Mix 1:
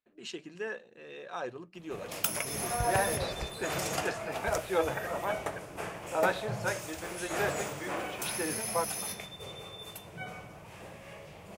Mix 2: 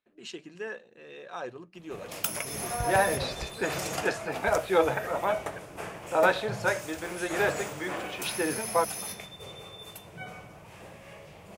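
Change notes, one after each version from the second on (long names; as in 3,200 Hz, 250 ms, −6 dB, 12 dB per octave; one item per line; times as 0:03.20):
second voice +6.0 dB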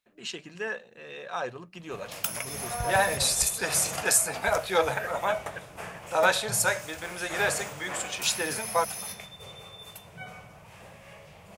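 first voice +6.5 dB
second voice: remove high-frequency loss of the air 270 metres
master: add parametric band 330 Hz −8 dB 0.89 octaves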